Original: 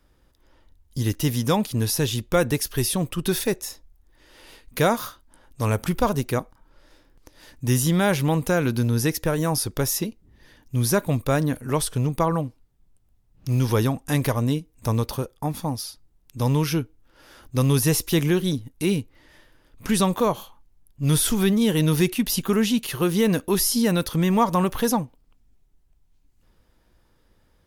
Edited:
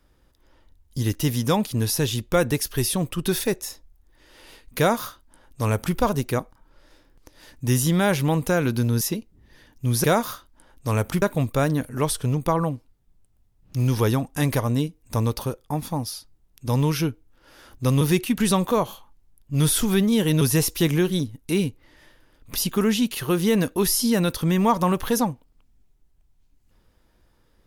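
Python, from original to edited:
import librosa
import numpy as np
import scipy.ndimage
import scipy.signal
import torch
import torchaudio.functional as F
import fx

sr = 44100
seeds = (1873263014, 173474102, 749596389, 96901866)

y = fx.edit(x, sr, fx.duplicate(start_s=4.78, length_s=1.18, to_s=10.94),
    fx.cut(start_s=9.01, length_s=0.9),
    fx.swap(start_s=17.73, length_s=2.14, other_s=21.9, other_length_s=0.37), tone=tone)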